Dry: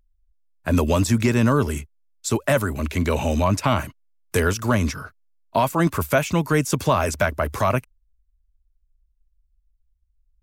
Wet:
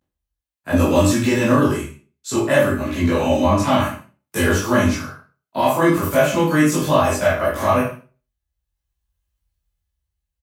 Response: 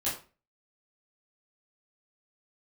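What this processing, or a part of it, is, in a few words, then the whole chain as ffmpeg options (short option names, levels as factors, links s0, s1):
far laptop microphone: -filter_complex "[0:a]asettb=1/sr,asplit=3[s0][s1][s2];[s0]atrim=end=1.674[s3];[s1]atrim=start=1.67:end=3.62,asetpts=PTS-STARTPTS,afade=t=in:d=0.004:c=qsin,afade=t=out:st=1.946:d=0.004:c=qsin,highshelf=f=5800:g=-5.5[s4];[s2]atrim=start=3.616[s5];[s3][s4]acrossfade=d=0.004:c1=hsin:c2=qsin[s6];[s6][s5]acrossfade=d=0.004:c1=qsin:c2=hsin,aecho=1:1:20|44|72.8|107.4|148.8:0.631|0.398|0.251|0.158|0.1[s7];[1:a]atrim=start_sample=2205[s8];[s7][s8]afir=irnorm=-1:irlink=0,highpass=130,dynaudnorm=f=140:g=17:m=3.55,volume=0.708"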